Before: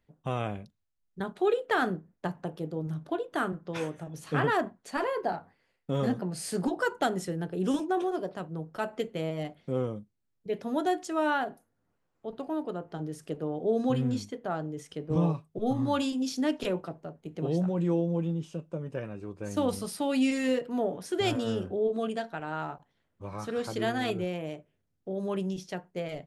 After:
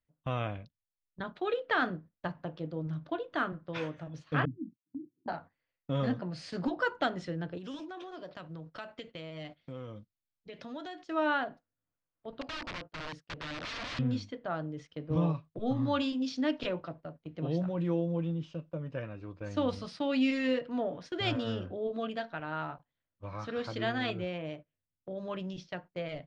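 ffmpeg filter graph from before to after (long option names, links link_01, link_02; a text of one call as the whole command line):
ffmpeg -i in.wav -filter_complex "[0:a]asettb=1/sr,asplit=3[link_01][link_02][link_03];[link_01]atrim=end=4.454[link_04];[link_02]atrim=start=4.45:end=5.28,asetpts=PTS-STARTPTS,afade=type=in:duration=0.004:curve=qsin,afade=type=out:start_time=0.826:duration=0.004:curve=qsin,aeval=exprs='sgn(val(0))*max(abs(val(0))-0.00237,0)':channel_layout=same,asuperpass=centerf=190:order=20:qfactor=0.86[link_05];[link_03]atrim=start=5.276[link_06];[link_04][link_05]acrossfade=duration=0.004:curve1=hsin:curve2=qsin[link_07];[link_07][link_06]acrossfade=duration=0.004:curve1=qsin:curve2=hsin,asettb=1/sr,asplit=3[link_08][link_09][link_10];[link_08]atrim=end=7.574[link_11];[link_09]atrim=start=7.57:end=11.02,asetpts=PTS-STARTPTS,afade=type=in:duration=0.004:curve=qsin,afade=type=out:start_time=3.446:duration=0.004:curve=qsin,highshelf=frequency=2300:gain=10,acompressor=threshold=-37dB:ratio=4:attack=3.2:release=140:knee=1:detection=peak[link_12];[link_10]atrim=start=11.016[link_13];[link_11][link_12]acrossfade=duration=0.004:curve1=hsin:curve2=qsin[link_14];[link_14][link_13]acrossfade=duration=0.004:curve1=qsin:curve2=hsin,asettb=1/sr,asplit=3[link_15][link_16][link_17];[link_15]atrim=end=12.414[link_18];[link_16]atrim=start=12.41:end=13.99,asetpts=PTS-STARTPTS,afade=type=in:duration=0.004:curve=qsin,afade=type=out:start_time=1.576:duration=0.004:curve=qsin,agate=range=-33dB:threshold=-46dB:ratio=3:release=100:detection=peak,aeval=exprs='(mod(42.2*val(0)+1,2)-1)/42.2':channel_layout=same[link_19];[link_17]atrim=start=13.986[link_20];[link_18][link_19]acrossfade=duration=0.004:curve1=hsin:curve2=qsin[link_21];[link_21][link_20]acrossfade=duration=0.004:curve1=qsin:curve2=hsin,lowpass=frequency=4700:width=0.5412,lowpass=frequency=4700:width=1.3066,agate=range=-13dB:threshold=-45dB:ratio=16:detection=peak,equalizer=frequency=200:width_type=o:width=0.33:gain=-8,equalizer=frequency=400:width_type=o:width=0.33:gain=-11,equalizer=frequency=800:width_type=o:width=0.33:gain=-6" out.wav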